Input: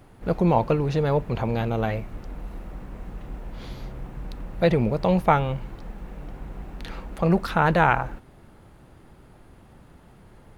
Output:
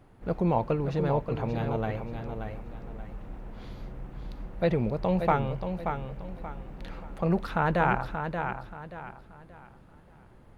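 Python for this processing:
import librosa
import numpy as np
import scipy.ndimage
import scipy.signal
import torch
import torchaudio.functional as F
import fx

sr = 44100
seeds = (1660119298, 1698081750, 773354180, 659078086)

y = fx.high_shelf(x, sr, hz=3600.0, db=-7.0)
y = fx.echo_feedback(y, sr, ms=580, feedback_pct=32, wet_db=-7)
y = y * librosa.db_to_amplitude(-5.5)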